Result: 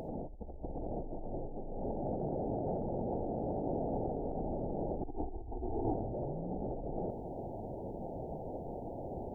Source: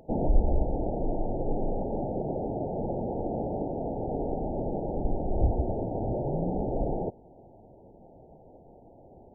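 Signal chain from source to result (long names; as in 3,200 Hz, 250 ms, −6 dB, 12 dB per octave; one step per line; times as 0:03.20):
0:05.02–0:05.95: phaser with its sweep stopped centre 850 Hz, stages 8
compressor whose output falls as the input rises −39 dBFS, ratio −1
level +1 dB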